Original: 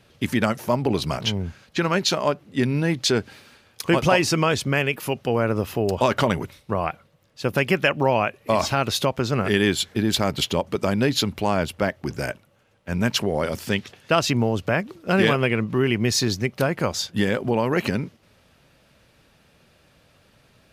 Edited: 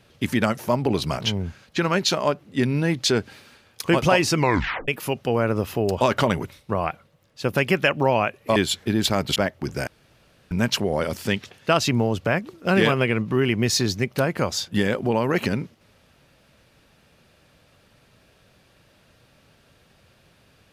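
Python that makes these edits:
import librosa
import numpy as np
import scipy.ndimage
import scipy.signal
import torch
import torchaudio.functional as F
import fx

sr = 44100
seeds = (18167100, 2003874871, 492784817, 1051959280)

y = fx.edit(x, sr, fx.tape_stop(start_s=4.37, length_s=0.51),
    fx.cut(start_s=8.56, length_s=1.09),
    fx.cut(start_s=10.45, length_s=1.33),
    fx.room_tone_fill(start_s=12.29, length_s=0.64), tone=tone)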